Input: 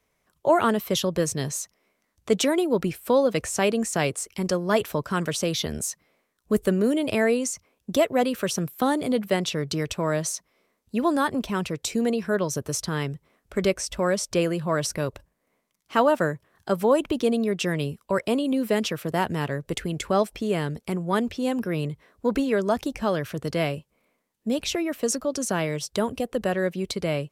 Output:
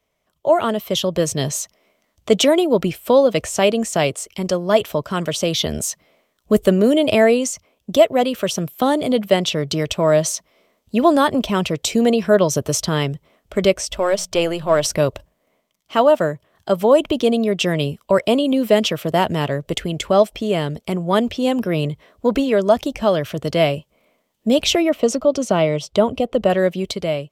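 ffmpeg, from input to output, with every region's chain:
ffmpeg -i in.wav -filter_complex "[0:a]asettb=1/sr,asplit=3[link_01][link_02][link_03];[link_01]atrim=end=13.984[link_04];[link_02]atrim=start=13.98:end=14.86,asetpts=PTS-STARTPTS,afade=type=in:duration=0.004:curve=qsin,afade=type=out:start_time=0.876:duration=0.004:curve=qsin,aeval=exprs='if(lt(val(0),0),0.708*val(0),val(0))':channel_layout=same,equalizer=frequency=190:width_type=o:width=1.2:gain=-7,bandreject=frequency=60:width_type=h:width=6,bandreject=frequency=120:width_type=h:width=6,bandreject=frequency=180:width_type=h:width=6[link_05];[link_03]atrim=start=14.856[link_06];[link_04][link_05]acrossfade=duration=0.004:curve1=hsin:curve2=qsin[link_07];[link_07][link_06]acrossfade=duration=0.004:curve1=qsin:curve2=hsin,asettb=1/sr,asplit=3[link_08][link_09][link_10];[link_08]atrim=end=24.894[link_11];[link_09]atrim=start=24.89:end=26.5,asetpts=PTS-STARTPTS,afade=type=in:duration=0.004:curve=qsin,afade=type=out:start_time=1.606:duration=0.004:curve=qsin,lowpass=frequency=2800:poles=1,bandreject=frequency=1700:width=6.7[link_12];[link_10]atrim=start=26.496[link_13];[link_11][link_12]acrossfade=duration=0.004:curve1=hsin:curve2=qsin[link_14];[link_14][link_13]acrossfade=duration=0.004:curve1=qsin:curve2=hsin,equalizer=frequency=630:width_type=o:width=0.33:gain=7,equalizer=frequency=1600:width_type=o:width=0.33:gain=-4,equalizer=frequency=3150:width_type=o:width=0.33:gain=6,equalizer=frequency=10000:width_type=o:width=0.33:gain=-5,dynaudnorm=framelen=190:gausssize=7:maxgain=11.5dB,volume=-1dB" out.wav

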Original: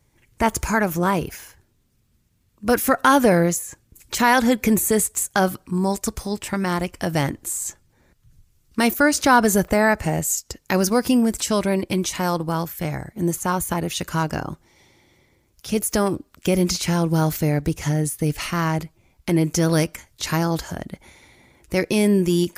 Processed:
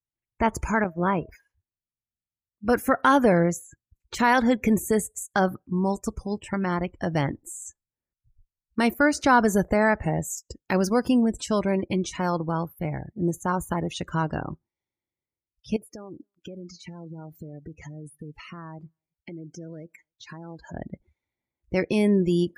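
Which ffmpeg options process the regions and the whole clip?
ffmpeg -i in.wav -filter_complex "[0:a]asettb=1/sr,asplit=3[link_01][link_02][link_03];[link_01]atrim=end=0.844[link_04];[link_02]atrim=start=0.84:end=1.29,asetpts=PTS-STARTPTS,afade=type=in:duration=0.004:curve=qsin,afade=type=out:start_time=0.446:duration=0.004:curve=qsin,agate=range=-33dB:threshold=-20dB:ratio=3:release=100:detection=peak,aeval=exprs='val(0)+0.00501*sin(2*PI*640*n/s)':channel_layout=same[link_05];[link_03]atrim=start=1.286[link_06];[link_04][link_05]acrossfade=duration=0.004:curve1=hsin:curve2=qsin[link_07];[link_07][link_06]acrossfade=duration=0.004:curve1=qsin:curve2=hsin,asettb=1/sr,asplit=3[link_08][link_09][link_10];[link_08]atrim=end=15.764[link_11];[link_09]atrim=start=15.76:end=20.74,asetpts=PTS-STARTPTS,afade=type=in:duration=0.004:curve=qsin,afade=type=out:start_time=4.976:duration=0.004:curve=qsin,acompressor=threshold=-30dB:ratio=12:attack=3.2:release=140:knee=1:detection=peak,lowshelf=frequency=84:gain=-10.5,aecho=1:1:271:0.0944,atrim=end_sample=219618[link_12];[link_10]atrim=start=20.736[link_13];[link_11][link_12]acrossfade=duration=0.004:curve1=hsin:curve2=qsin[link_14];[link_14][link_13]acrossfade=duration=0.004:curve1=qsin:curve2=hsin,afftdn=noise_reduction=33:noise_floor=-34,lowpass=frequency=3500:poles=1,volume=-3dB" out.wav

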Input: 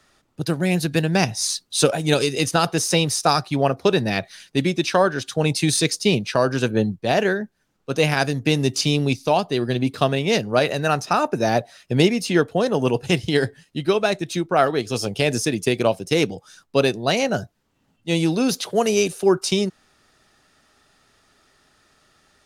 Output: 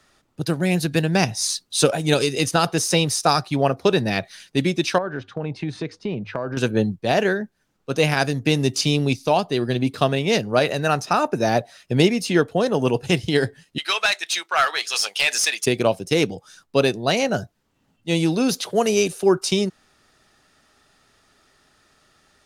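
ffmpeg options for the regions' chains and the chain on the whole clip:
ffmpeg -i in.wav -filter_complex "[0:a]asettb=1/sr,asplit=3[link_01][link_02][link_03];[link_01]atrim=end=4.984[link_04];[link_02]atrim=start=4.98:end=6.57,asetpts=PTS-STARTPTS,afade=type=in:duration=0.004:curve=qsin,afade=type=out:start_time=1.586:duration=0.004:curve=qsin,lowpass=1700,bandreject=frequency=50:width_type=h:width=6,bandreject=frequency=100:width_type=h:width=6,acompressor=threshold=-23dB:ratio=4:attack=3.2:release=140:knee=1:detection=peak[link_05];[link_03]atrim=start=6.566[link_06];[link_04][link_05]acrossfade=duration=0.004:curve1=hsin:curve2=qsin[link_07];[link_07][link_06]acrossfade=duration=0.004:curve1=qsin:curve2=hsin,asettb=1/sr,asplit=3[link_08][link_09][link_10];[link_08]atrim=end=13.784[link_11];[link_09]atrim=start=13.78:end=15.66,asetpts=PTS-STARTPTS,afade=type=in:duration=0.004:curve=qsin,afade=type=out:start_time=1.876:duration=0.004:curve=qsin,highpass=1400,asplit=2[link_12][link_13];[link_13]highpass=frequency=720:poles=1,volume=16dB,asoftclip=type=tanh:threshold=-7dB[link_14];[link_12][link_14]amix=inputs=2:normalize=0,lowpass=frequency=6500:poles=1,volume=-6dB[link_15];[link_10]atrim=start=15.656[link_16];[link_11][link_15]acrossfade=duration=0.004:curve1=hsin:curve2=qsin[link_17];[link_17][link_16]acrossfade=duration=0.004:curve1=qsin:curve2=hsin" out.wav

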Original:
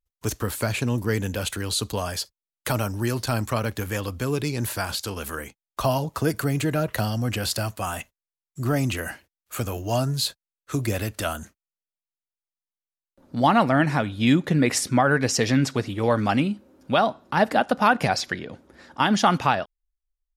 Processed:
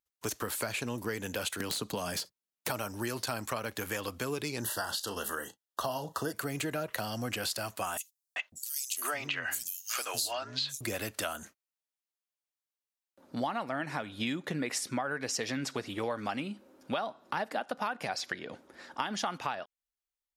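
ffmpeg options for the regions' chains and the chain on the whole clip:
ffmpeg -i in.wav -filter_complex "[0:a]asettb=1/sr,asplit=3[link_01][link_02][link_03];[link_01]atrim=end=1.604[link_04];[link_02]atrim=start=1.6:end=2.7,asetpts=PTS-STARTPTS,afade=type=in:duration=0.004:curve=qsin,afade=type=out:start_time=1.096:duration=0.004:curve=qsin,acrossover=split=500|2200[link_05][link_06][link_07];[link_05]acompressor=threshold=-35dB:ratio=4[link_08];[link_06]acompressor=threshold=-33dB:ratio=4[link_09];[link_07]acompressor=threshold=-30dB:ratio=4[link_10];[link_08][link_09][link_10]amix=inputs=3:normalize=0,aeval=exprs='(mod(11.2*val(0)+1,2)-1)/11.2':channel_layout=same,equalizer=frequency=180:width=0.68:gain=13.5[link_11];[link_03]atrim=start=2.696[link_12];[link_04][link_11]acrossfade=duration=0.004:curve1=hsin:curve2=qsin[link_13];[link_13][link_12]acrossfade=duration=0.004:curve1=qsin:curve2=hsin,asettb=1/sr,asplit=3[link_14][link_15][link_16];[link_14]atrim=end=4.624[link_17];[link_15]atrim=start=4.62:end=6.33,asetpts=PTS-STARTPTS,afade=type=in:duration=0.004:curve=qsin,afade=type=out:start_time=1.706:duration=0.004:curve=qsin,asuperstop=centerf=2300:order=20:qfactor=3.3,asplit=2[link_18][link_19];[link_19]adelay=34,volume=-13dB[link_20];[link_18][link_20]amix=inputs=2:normalize=0,atrim=end_sample=75411[link_21];[link_16]atrim=start=6.326[link_22];[link_17][link_21]acrossfade=duration=0.004:curve1=hsin:curve2=qsin[link_23];[link_23][link_22]acrossfade=duration=0.004:curve1=qsin:curve2=hsin,asettb=1/sr,asplit=3[link_24][link_25][link_26];[link_24]atrim=end=7.974[link_27];[link_25]atrim=start=7.97:end=10.81,asetpts=PTS-STARTPTS,afade=type=in:duration=0.004:curve=qsin,afade=type=out:start_time=2.836:duration=0.004:curve=qsin,tiltshelf=frequency=660:gain=-9,acrossover=split=280|4300[link_28][link_29][link_30];[link_29]adelay=390[link_31];[link_28]adelay=550[link_32];[link_32][link_31][link_30]amix=inputs=3:normalize=0,atrim=end_sample=125244[link_33];[link_26]atrim=start=10.806[link_34];[link_27][link_33]acrossfade=duration=0.004:curve1=hsin:curve2=qsin[link_35];[link_35][link_34]acrossfade=duration=0.004:curve1=qsin:curve2=hsin,highpass=frequency=440:poles=1,acompressor=threshold=-31dB:ratio=6" out.wav

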